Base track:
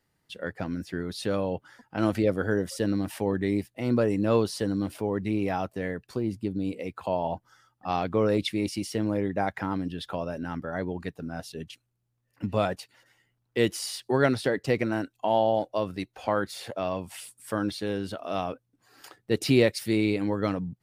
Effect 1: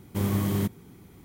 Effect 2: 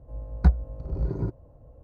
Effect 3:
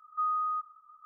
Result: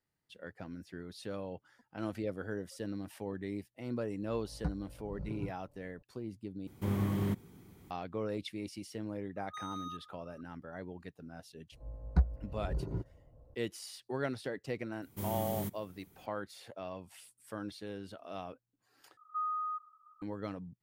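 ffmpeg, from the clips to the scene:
-filter_complex "[2:a]asplit=2[a][b];[1:a]asplit=2[c][d];[3:a]asplit=2[e][f];[0:a]volume=-13dB[g];[a]aecho=1:1:6.9:0.65[h];[c]acrossover=split=3100[i][j];[j]acompressor=threshold=-47dB:ratio=4:attack=1:release=60[k];[i][k]amix=inputs=2:normalize=0[l];[e]asoftclip=type=hard:threshold=-35.5dB[m];[d]highshelf=f=8k:g=11.5[n];[g]asplit=3[o][p][q];[o]atrim=end=6.674[r];[l]atrim=end=1.24,asetpts=PTS-STARTPTS,volume=-6dB[s];[p]atrim=start=7.906:end=19.174[t];[f]atrim=end=1.05,asetpts=PTS-STARTPTS,volume=-5.5dB[u];[q]atrim=start=20.216[v];[h]atrim=end=1.83,asetpts=PTS-STARTPTS,volume=-14.5dB,afade=t=in:d=0.004:c=hsin,afade=t=out:st=1.826:d=0.004:c=hsin,adelay=4200[w];[m]atrim=end=1.05,asetpts=PTS-STARTPTS,volume=-7.5dB,afade=t=in:d=0.004:c=hsin,afade=t=out:st=1.046:d=0.004:c=hsin,adelay=9360[x];[b]atrim=end=1.83,asetpts=PTS-STARTPTS,volume=-8.5dB,afade=t=in:d=0.004:c=hsin,afade=t=out:st=1.826:d=0.004:c=hsin,adelay=11720[y];[n]atrim=end=1.24,asetpts=PTS-STARTPTS,volume=-12.5dB,afade=t=in:d=0.004:c=hsin,afade=t=out:st=1.236:d=0.004:c=hsin,adelay=15020[z];[r][s]acrossfade=d=0.004:c1=hsin:c2=hsin[aa];[aa][t]acrossfade=d=0.004:c1=hsin:c2=hsin[ab];[ab][u]acrossfade=d=0.004:c1=hsin:c2=hsin[ac];[ac][v]acrossfade=d=0.004:c1=hsin:c2=hsin[ad];[ad][w][x][y][z]amix=inputs=5:normalize=0"

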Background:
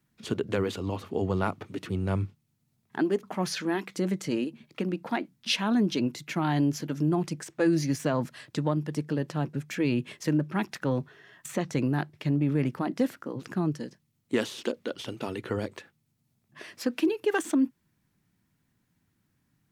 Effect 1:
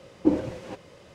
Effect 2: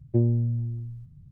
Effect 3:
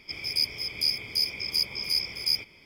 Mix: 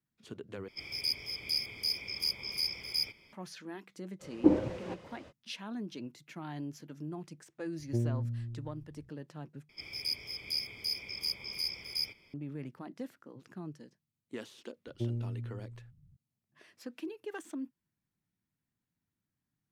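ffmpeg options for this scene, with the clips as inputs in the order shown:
-filter_complex "[3:a]asplit=2[a][b];[2:a]asplit=2[c][d];[0:a]volume=-15.5dB[e];[1:a]highshelf=f=5.1k:g=-8[f];[e]asplit=3[g][h][i];[g]atrim=end=0.684[j];[a]atrim=end=2.65,asetpts=PTS-STARTPTS,volume=-6.5dB[k];[h]atrim=start=3.326:end=9.694[l];[b]atrim=end=2.65,asetpts=PTS-STARTPTS,volume=-8.5dB[m];[i]atrim=start=12.336[n];[f]atrim=end=1.14,asetpts=PTS-STARTPTS,volume=-2dB,afade=t=in:d=0.05,afade=t=out:st=1.09:d=0.05,adelay=4190[o];[c]atrim=end=1.31,asetpts=PTS-STARTPTS,volume=-9.5dB,afade=t=in:d=0.004:c=hsin,afade=t=out:st=1.306:d=0.004:c=hsin,adelay=7790[p];[d]atrim=end=1.31,asetpts=PTS-STARTPTS,volume=-12.5dB,afade=t=in:d=0.004:c=hsin,afade=t=out:st=1.306:d=0.004:c=hsin,adelay=14860[q];[j][k]acrossfade=d=0.004:c1=hsin:c2=hsin[r];[r][l]acrossfade=d=0.004:c1=hsin:c2=hsin[s];[s][m]acrossfade=d=0.004:c1=hsin:c2=hsin[t];[t][n]acrossfade=d=0.004:c1=hsin:c2=hsin[u];[u][o][p][q]amix=inputs=4:normalize=0"

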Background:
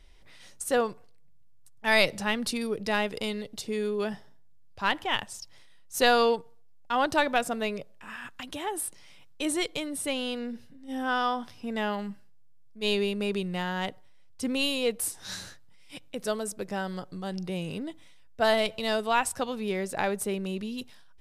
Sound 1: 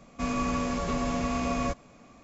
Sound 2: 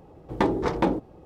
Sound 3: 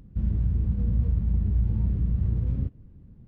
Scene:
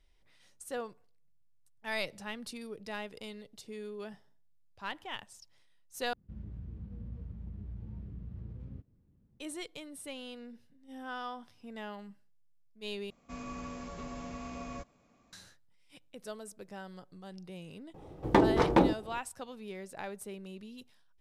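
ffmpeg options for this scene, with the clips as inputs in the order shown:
-filter_complex "[0:a]volume=-13dB[a];[3:a]lowshelf=f=120:g=-9.5[b];[a]asplit=3[c][d][e];[c]atrim=end=6.134[f];[b]atrim=end=3.27,asetpts=PTS-STARTPTS,volume=-13dB[g];[d]atrim=start=9.396:end=13.104[h];[1:a]atrim=end=2.23,asetpts=PTS-STARTPTS,volume=-13.5dB[i];[e]atrim=start=15.326[j];[2:a]atrim=end=1.25,asetpts=PTS-STARTPTS,volume=-0.5dB,afade=t=in:d=0.004:c=hsin,afade=t=out:st=1.246:d=0.004:c=hsin,adelay=17940[k];[f][g]acrossfade=d=0.004:c1=hsin:c2=hsin[l];[l][h]acrossfade=d=0.004:c1=hsin:c2=hsin[m];[m][i]acrossfade=d=0.004:c1=hsin:c2=hsin[n];[n][j]acrossfade=d=0.004:c1=hsin:c2=hsin[o];[o][k]amix=inputs=2:normalize=0"

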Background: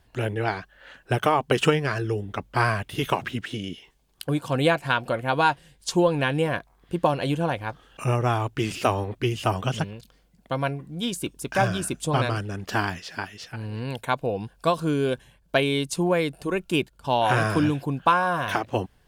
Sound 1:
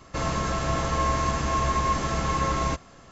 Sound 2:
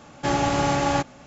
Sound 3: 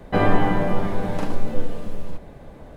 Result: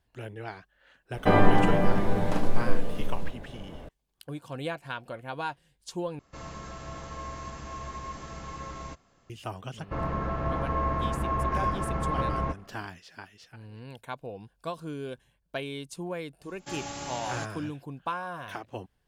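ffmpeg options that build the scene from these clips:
-filter_complex "[1:a]asplit=2[a][b];[0:a]volume=-13dB[c];[b]lowpass=1.5k[d];[2:a]crystalizer=i=3.5:c=0[e];[c]asplit=2[f][g];[f]atrim=end=6.194[h];[a]atrim=end=3.11,asetpts=PTS-STARTPTS,volume=-14.5dB[i];[g]atrim=start=9.296[j];[3:a]atrim=end=2.76,asetpts=PTS-STARTPTS,volume=-1.5dB,afade=t=in:d=0.004:c=hsin,afade=t=out:st=2.756:d=0.004:c=hsin,adelay=1130[k];[d]atrim=end=3.11,asetpts=PTS-STARTPTS,volume=-3dB,afade=t=in:d=0.004:c=hsin,afade=t=out:st=3.106:d=0.004:c=hsin,adelay=9770[l];[e]atrim=end=1.26,asetpts=PTS-STARTPTS,volume=-17.5dB,afade=t=in:d=0.004:c=hsin,afade=t=out:st=1.256:d=0.004:c=hsin,adelay=16430[m];[h][i]acrossfade=d=0.004:c1=hsin:c2=hsin[n];[n][j]acrossfade=d=0.004:c1=hsin:c2=hsin[o];[o][k][l][m]amix=inputs=4:normalize=0"

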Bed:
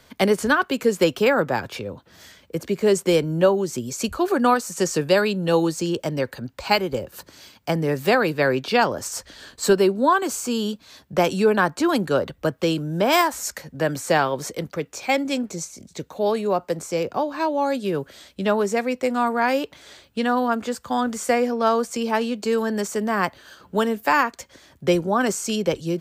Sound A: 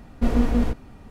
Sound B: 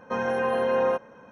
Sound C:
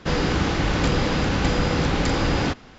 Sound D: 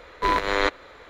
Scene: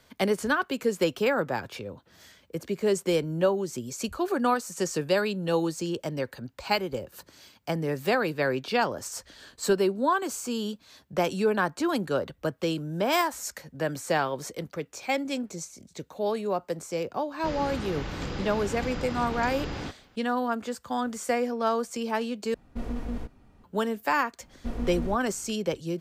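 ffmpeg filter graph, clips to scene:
-filter_complex "[1:a]asplit=2[a][b];[0:a]volume=-6.5dB[c];[a]alimiter=limit=-11.5dB:level=0:latency=1:release=14[d];[c]asplit=2[e][f];[e]atrim=end=22.544[g];[d]atrim=end=1.1,asetpts=PTS-STARTPTS,volume=-12dB[h];[f]atrim=start=23.636[i];[3:a]atrim=end=2.78,asetpts=PTS-STARTPTS,volume=-13dB,afade=t=in:d=0.004:c=hsin,afade=t=out:st=2.776:d=0.004:c=hsin,adelay=17380[j];[b]atrim=end=1.1,asetpts=PTS-STARTPTS,volume=-12dB,afade=t=in:d=0.004:c=hsin,afade=t=out:st=1.096:d=0.004:c=hsin,adelay=24430[k];[g][h]acrossfade=d=0.004:c1=hsin:c2=hsin[l];[l][i]acrossfade=d=0.004:c1=hsin:c2=hsin[m];[m][j][k]amix=inputs=3:normalize=0"

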